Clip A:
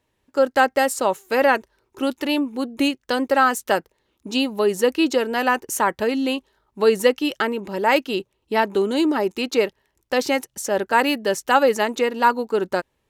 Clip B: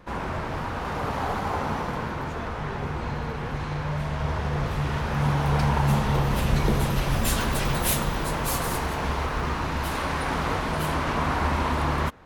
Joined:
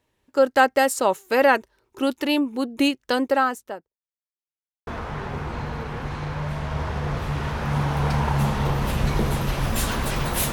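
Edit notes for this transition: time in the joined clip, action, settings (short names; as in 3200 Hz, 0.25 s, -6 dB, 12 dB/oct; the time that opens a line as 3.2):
clip A
3.1–4.02 studio fade out
4.02–4.87 mute
4.87 switch to clip B from 2.36 s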